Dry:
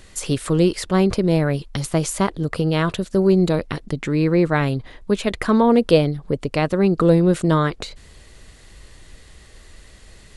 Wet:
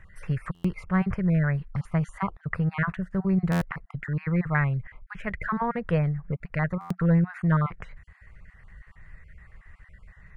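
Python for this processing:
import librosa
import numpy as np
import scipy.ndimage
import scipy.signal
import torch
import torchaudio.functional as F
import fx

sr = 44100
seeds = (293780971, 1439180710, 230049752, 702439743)

y = fx.spec_dropout(x, sr, seeds[0], share_pct=22)
y = fx.curve_eq(y, sr, hz=(180.0, 270.0, 1900.0, 3600.0), db=(0, -19, 3, -26))
y = fx.buffer_glitch(y, sr, at_s=(0.54, 3.51, 6.8), block=512, repeats=8)
y = y * librosa.db_to_amplitude(-2.0)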